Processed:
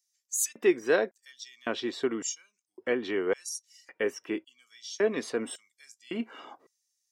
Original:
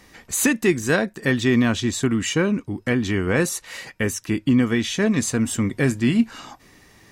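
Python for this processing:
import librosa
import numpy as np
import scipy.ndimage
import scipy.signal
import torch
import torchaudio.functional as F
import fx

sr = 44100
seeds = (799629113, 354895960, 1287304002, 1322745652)

y = fx.filter_lfo_highpass(x, sr, shape='square', hz=0.9, low_hz=420.0, high_hz=6200.0, q=2.3)
y = fx.noise_reduce_blind(y, sr, reduce_db=16)
y = y * librosa.db_to_amplitude(-8.0)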